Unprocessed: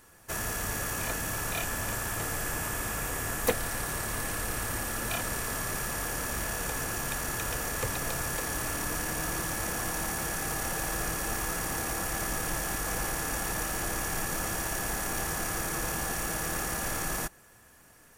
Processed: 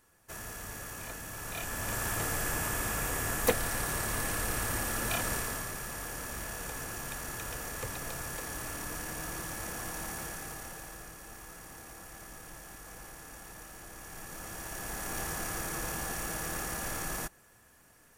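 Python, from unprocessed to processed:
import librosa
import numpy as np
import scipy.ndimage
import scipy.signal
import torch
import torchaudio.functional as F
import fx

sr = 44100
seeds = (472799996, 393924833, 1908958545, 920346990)

y = fx.gain(x, sr, db=fx.line((1.31, -9.5), (2.05, 0.0), (5.34, 0.0), (5.75, -6.5), (10.19, -6.5), (11.13, -16.0), (13.9, -16.0), (15.19, -4.0)))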